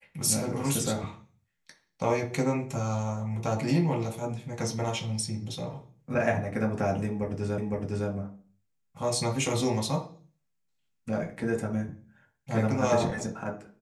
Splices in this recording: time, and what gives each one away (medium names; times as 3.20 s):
7.58 s: repeat of the last 0.51 s